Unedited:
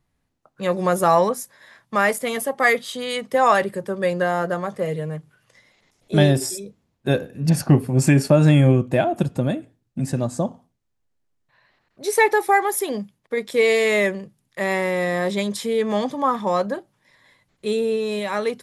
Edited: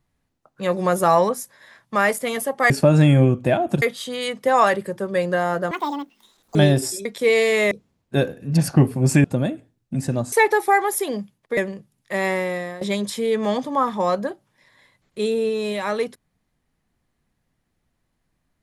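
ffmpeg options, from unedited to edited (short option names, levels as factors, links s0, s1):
-filter_complex "[0:a]asplit=11[s0][s1][s2][s3][s4][s5][s6][s7][s8][s9][s10];[s0]atrim=end=2.702[s11];[s1]atrim=start=8.168:end=9.292[s12];[s2]atrim=start=2.698:end=4.594[s13];[s3]atrim=start=4.59:end=6.14,asetpts=PTS-STARTPTS,asetrate=81144,aresample=44100,atrim=end_sample=37149,asetpts=PTS-STARTPTS[s14];[s4]atrim=start=6.136:end=6.642[s15];[s5]atrim=start=13.378:end=14.042[s16];[s6]atrim=start=6.638:end=8.172[s17];[s7]atrim=start=9.288:end=10.372[s18];[s8]atrim=start=12.128:end=13.382[s19];[s9]atrim=start=14.038:end=15.28,asetpts=PTS-STARTPTS,afade=t=out:st=0.772:d=0.47:silence=0.141254[s20];[s10]atrim=start=15.28,asetpts=PTS-STARTPTS,afade=t=in:d=0.004:c=hsin:silence=0.141254[s21];[s11][s12]acrossfade=d=0.004:c1=hsin:c2=hsin[s22];[s22][s13]acrossfade=d=0.004:c1=hsin:c2=hsin[s23];[s23][s14]acrossfade=d=0.004:c1=hsin:c2=hsin[s24];[s24][s15]acrossfade=d=0.004:c1=hsin:c2=hsin[s25];[s25][s16]acrossfade=d=0.004:c1=hsin:c2=hsin[s26];[s26][s17]acrossfade=d=0.004:c1=hsin:c2=hsin[s27];[s27][s18]acrossfade=d=0.004:c1=hsin:c2=hsin[s28];[s28][s19]acrossfade=d=0.004:c1=hsin:c2=hsin[s29];[s20][s21]concat=n=2:v=0:a=1[s30];[s29][s30]acrossfade=d=0.004:c1=hsin:c2=hsin"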